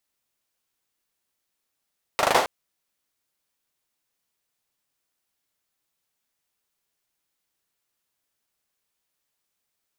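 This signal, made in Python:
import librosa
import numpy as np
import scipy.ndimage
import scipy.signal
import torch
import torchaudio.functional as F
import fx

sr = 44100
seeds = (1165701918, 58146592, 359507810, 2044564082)

y = fx.drum_clap(sr, seeds[0], length_s=0.27, bursts=5, spacing_ms=39, hz=740.0, decay_s=0.45)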